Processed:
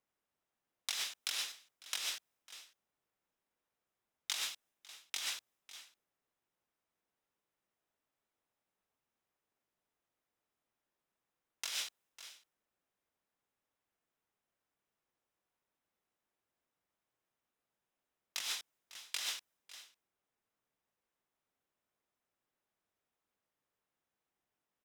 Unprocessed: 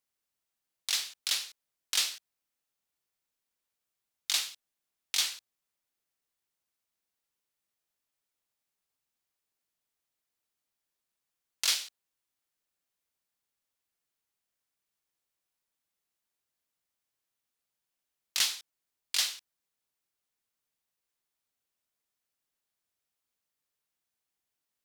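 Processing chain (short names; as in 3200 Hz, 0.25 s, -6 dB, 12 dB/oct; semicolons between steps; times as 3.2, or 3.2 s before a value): low shelf 140 Hz -6.5 dB; notch 4400 Hz, Q 10; limiter -19.5 dBFS, peak gain reduction 7 dB; high shelf 2300 Hz -6.5 dB; on a send: echo 0.55 s -22.5 dB; on the sum: negative-ratio compressor -42 dBFS, ratio -1; mismatched tape noise reduction decoder only; gain +3.5 dB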